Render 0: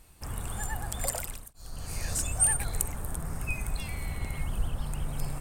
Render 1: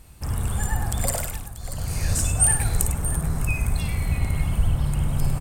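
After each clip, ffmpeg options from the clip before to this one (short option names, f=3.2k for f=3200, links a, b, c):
-filter_complex "[0:a]equalizer=f=100:w=0.56:g=7.5,asplit=2[a][b];[b]aecho=0:1:55|101|636:0.376|0.316|0.237[c];[a][c]amix=inputs=2:normalize=0,volume=4.5dB"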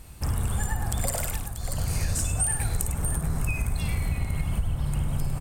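-af "acompressor=threshold=-25dB:ratio=6,volume=2.5dB"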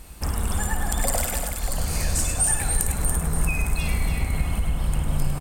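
-af "equalizer=f=110:t=o:w=0.65:g=-13,aecho=1:1:105|285.7:0.316|0.501,volume=4dB"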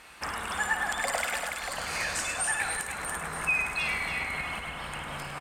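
-filter_complex "[0:a]asplit=2[a][b];[b]alimiter=limit=-11dB:level=0:latency=1:release=416,volume=1.5dB[c];[a][c]amix=inputs=2:normalize=0,bandpass=f=1.8k:t=q:w=1.1:csg=0"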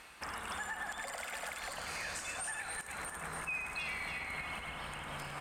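-af "areverse,acompressor=mode=upward:threshold=-37dB:ratio=2.5,areverse,alimiter=level_in=1dB:limit=-24dB:level=0:latency=1:release=175,volume=-1dB,volume=-5.5dB"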